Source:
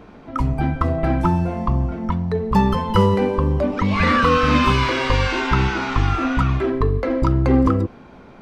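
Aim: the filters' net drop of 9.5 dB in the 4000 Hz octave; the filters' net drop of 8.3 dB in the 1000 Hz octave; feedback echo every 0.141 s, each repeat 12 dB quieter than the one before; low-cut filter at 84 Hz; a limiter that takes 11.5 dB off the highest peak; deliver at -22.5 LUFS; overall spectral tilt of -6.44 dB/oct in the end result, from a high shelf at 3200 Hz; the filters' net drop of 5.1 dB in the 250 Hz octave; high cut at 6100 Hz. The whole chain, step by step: HPF 84 Hz; LPF 6100 Hz; bell 250 Hz -6 dB; bell 1000 Hz -8.5 dB; high shelf 3200 Hz -7 dB; bell 4000 Hz -7.5 dB; limiter -20 dBFS; feedback echo 0.141 s, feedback 25%, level -12 dB; gain +6 dB

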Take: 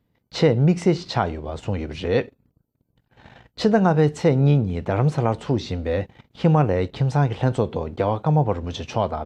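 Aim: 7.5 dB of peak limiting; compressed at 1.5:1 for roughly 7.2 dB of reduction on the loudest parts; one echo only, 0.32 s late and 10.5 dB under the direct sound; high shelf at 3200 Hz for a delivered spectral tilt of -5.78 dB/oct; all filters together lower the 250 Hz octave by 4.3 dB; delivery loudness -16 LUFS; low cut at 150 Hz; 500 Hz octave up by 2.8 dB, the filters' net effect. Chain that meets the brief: HPF 150 Hz; bell 250 Hz -6.5 dB; bell 500 Hz +5 dB; high shelf 3200 Hz -4.5 dB; compressor 1.5:1, threshold -32 dBFS; limiter -18.5 dBFS; echo 0.32 s -10.5 dB; gain +14.5 dB

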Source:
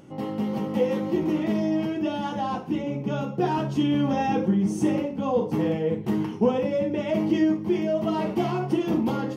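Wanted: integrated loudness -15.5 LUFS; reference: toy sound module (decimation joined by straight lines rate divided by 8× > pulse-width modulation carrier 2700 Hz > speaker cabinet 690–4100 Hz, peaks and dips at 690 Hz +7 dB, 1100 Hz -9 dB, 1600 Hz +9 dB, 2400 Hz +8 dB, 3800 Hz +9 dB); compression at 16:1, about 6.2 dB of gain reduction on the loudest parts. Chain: compressor 16:1, threshold -23 dBFS; decimation joined by straight lines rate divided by 8×; pulse-width modulation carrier 2700 Hz; speaker cabinet 690–4100 Hz, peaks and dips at 690 Hz +7 dB, 1100 Hz -9 dB, 1600 Hz +9 dB, 2400 Hz +8 dB, 3800 Hz +9 dB; gain +15 dB

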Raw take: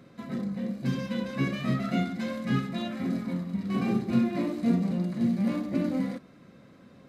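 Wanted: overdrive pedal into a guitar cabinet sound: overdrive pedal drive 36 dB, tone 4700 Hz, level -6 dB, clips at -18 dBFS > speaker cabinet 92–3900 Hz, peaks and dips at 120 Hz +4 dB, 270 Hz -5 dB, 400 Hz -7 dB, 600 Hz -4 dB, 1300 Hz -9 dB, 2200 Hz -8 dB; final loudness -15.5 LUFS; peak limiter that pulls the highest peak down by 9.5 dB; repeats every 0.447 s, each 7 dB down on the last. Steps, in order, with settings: limiter -22 dBFS; feedback echo 0.447 s, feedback 45%, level -7 dB; overdrive pedal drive 36 dB, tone 4700 Hz, level -6 dB, clips at -18 dBFS; speaker cabinet 92–3900 Hz, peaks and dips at 120 Hz +4 dB, 270 Hz -5 dB, 400 Hz -7 dB, 600 Hz -4 dB, 1300 Hz -9 dB, 2200 Hz -8 dB; gain +12 dB

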